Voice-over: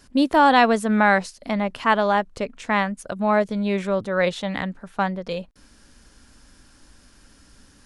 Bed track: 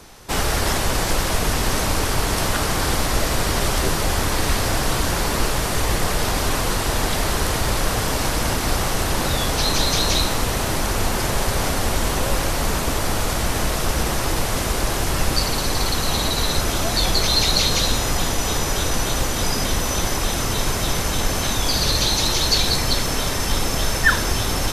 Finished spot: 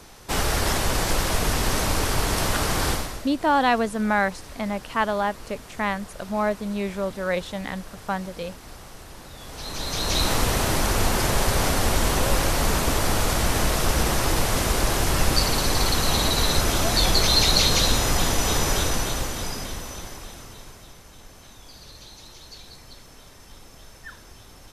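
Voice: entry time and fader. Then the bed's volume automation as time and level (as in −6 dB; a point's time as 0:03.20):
3.10 s, −4.5 dB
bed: 0:02.90 −2.5 dB
0:03.30 −21.5 dB
0:09.33 −21.5 dB
0:10.31 −0.5 dB
0:18.74 −0.5 dB
0:20.99 −25.5 dB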